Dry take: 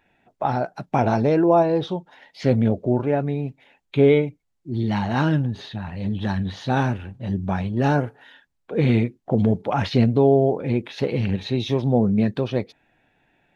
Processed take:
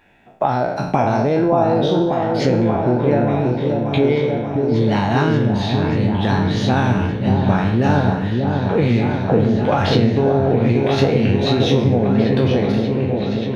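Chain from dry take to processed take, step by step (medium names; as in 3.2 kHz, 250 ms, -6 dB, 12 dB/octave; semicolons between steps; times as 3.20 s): spectral sustain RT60 0.65 s; compression, threshold -22 dBFS, peak gain reduction 11 dB; delay with an opening low-pass 584 ms, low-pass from 750 Hz, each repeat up 1 oct, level -3 dB; trim +8 dB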